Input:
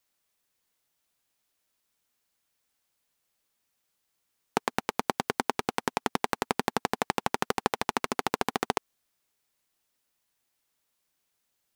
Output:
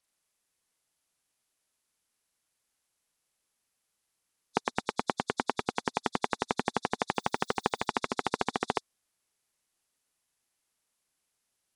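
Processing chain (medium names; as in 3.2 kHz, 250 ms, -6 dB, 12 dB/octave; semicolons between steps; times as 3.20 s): knee-point frequency compression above 3.4 kHz 1.5:1; 7.13–7.86 s: added noise violet -65 dBFS; trim -2 dB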